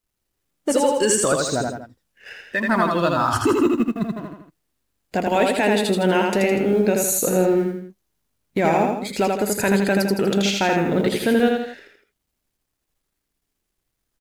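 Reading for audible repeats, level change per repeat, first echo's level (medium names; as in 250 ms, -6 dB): 3, -6.5 dB, -3.0 dB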